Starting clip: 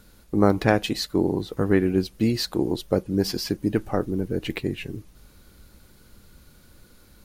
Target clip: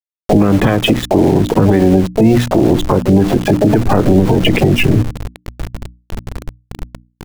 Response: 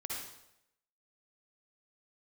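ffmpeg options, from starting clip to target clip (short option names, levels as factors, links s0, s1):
-filter_complex "[0:a]acrossover=split=290|2000[s0][s1][s2];[s0]acontrast=30[s3];[s3][s1][s2]amix=inputs=3:normalize=0,asplit=3[s4][s5][s6];[s5]asetrate=66075,aresample=44100,atempo=0.66742,volume=0.158[s7];[s6]asetrate=88200,aresample=44100,atempo=0.5,volume=0.251[s8];[s4][s7][s8]amix=inputs=3:normalize=0,aresample=8000,aresample=44100,afftdn=nr=16:nf=-35,acompressor=threshold=0.0794:ratio=20,aeval=exprs='val(0)*gte(abs(val(0)),0.00841)':c=same,bandreject=f=60:t=h:w=6,bandreject=f=120:t=h:w=6,bandreject=f=180:t=h:w=6,bandreject=f=240:t=h:w=6,bandreject=f=300:t=h:w=6,alimiter=level_in=18.8:limit=0.891:release=50:level=0:latency=1,volume=0.891"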